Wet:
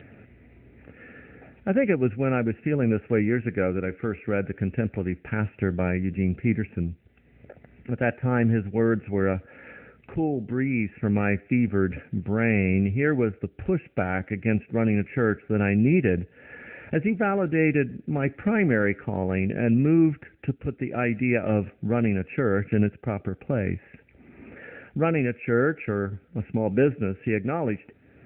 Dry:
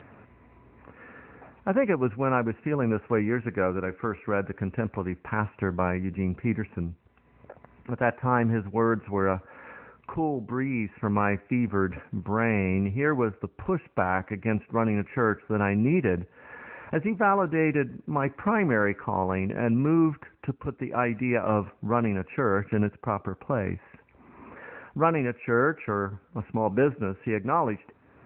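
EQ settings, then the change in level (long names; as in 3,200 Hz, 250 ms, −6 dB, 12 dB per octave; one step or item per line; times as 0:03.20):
phaser with its sweep stopped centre 2,500 Hz, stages 4
+4.0 dB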